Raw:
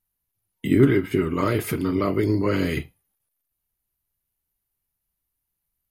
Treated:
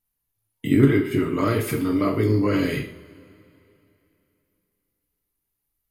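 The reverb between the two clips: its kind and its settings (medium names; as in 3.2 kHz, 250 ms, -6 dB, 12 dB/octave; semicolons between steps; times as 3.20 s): two-slope reverb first 0.46 s, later 3 s, from -22 dB, DRR 2 dB; trim -1.5 dB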